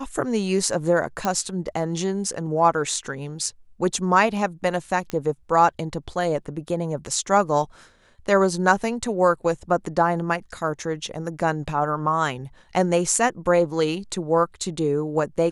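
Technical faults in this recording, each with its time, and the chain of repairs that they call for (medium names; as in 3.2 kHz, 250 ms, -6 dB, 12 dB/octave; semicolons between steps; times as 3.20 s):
1.25 s: pop -10 dBFS
5.10 s: pop -15 dBFS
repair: de-click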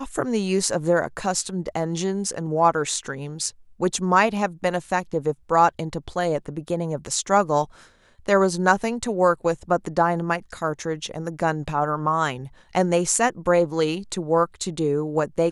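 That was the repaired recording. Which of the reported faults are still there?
1.25 s: pop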